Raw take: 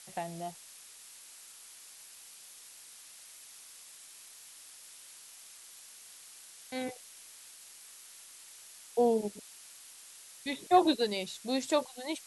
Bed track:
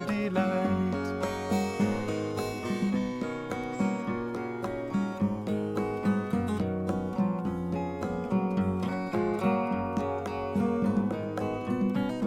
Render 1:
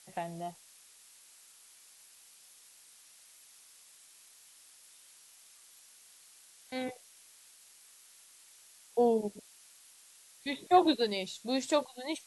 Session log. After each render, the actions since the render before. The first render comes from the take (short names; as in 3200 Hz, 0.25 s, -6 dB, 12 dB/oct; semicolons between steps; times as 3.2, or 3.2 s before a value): noise print and reduce 6 dB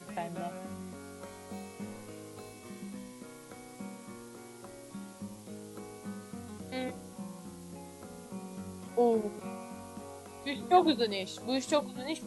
add bed track -15.5 dB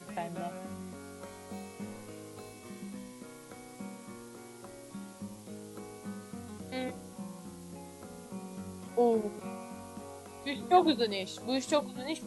nothing audible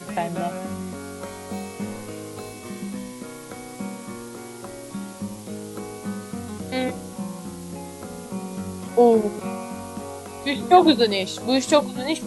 gain +11.5 dB; limiter -3 dBFS, peak gain reduction 2.5 dB